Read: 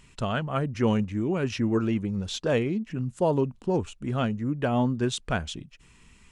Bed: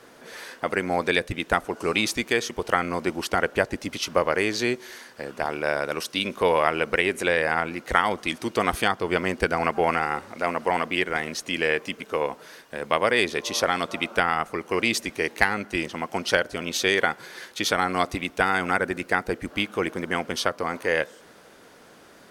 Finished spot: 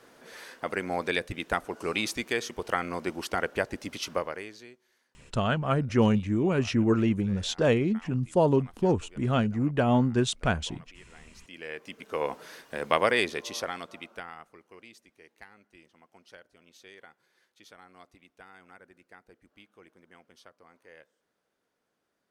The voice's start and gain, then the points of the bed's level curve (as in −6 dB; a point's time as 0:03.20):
5.15 s, +1.5 dB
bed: 0:04.12 −6 dB
0:04.80 −29.5 dB
0:11.08 −29.5 dB
0:12.34 −1.5 dB
0:13.03 −1.5 dB
0:14.95 −29.5 dB